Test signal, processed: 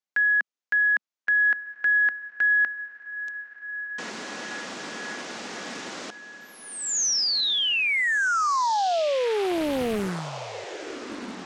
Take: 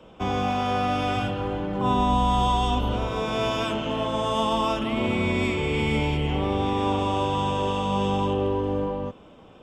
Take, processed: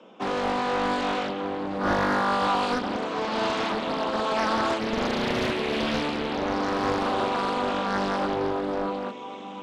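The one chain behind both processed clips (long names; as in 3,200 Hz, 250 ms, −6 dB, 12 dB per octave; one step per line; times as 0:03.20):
elliptic band-pass filter 210–6,700 Hz, stop band 40 dB
on a send: feedback delay with all-pass diffusion 1,504 ms, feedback 51%, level −13.5 dB
on the sum: highs frequency-modulated by the lows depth 0.95 ms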